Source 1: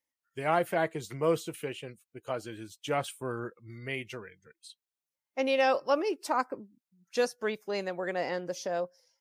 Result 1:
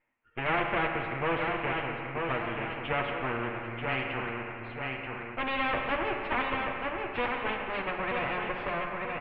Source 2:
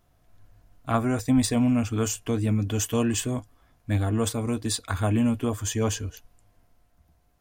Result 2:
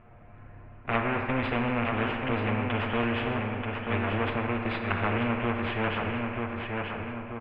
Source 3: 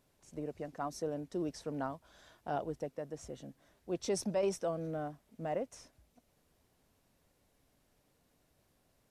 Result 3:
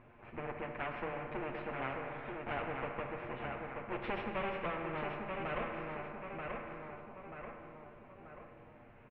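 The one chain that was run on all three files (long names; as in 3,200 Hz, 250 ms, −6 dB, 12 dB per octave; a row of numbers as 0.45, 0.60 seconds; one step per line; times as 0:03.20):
lower of the sound and its delayed copy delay 8.5 ms
elliptic low-pass filter 2,500 Hz, stop band 60 dB
repeating echo 934 ms, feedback 30%, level −7.5 dB
four-comb reverb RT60 1.7 s, combs from 30 ms, DRR 7 dB
every bin compressed towards the loudest bin 2 to 1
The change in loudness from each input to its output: +0.5, −3.5, −2.5 LU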